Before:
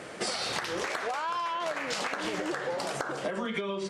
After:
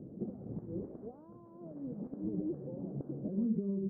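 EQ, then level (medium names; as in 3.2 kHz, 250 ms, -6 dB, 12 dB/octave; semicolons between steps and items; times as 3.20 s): four-pole ladder low-pass 310 Hz, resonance 25%; +9.0 dB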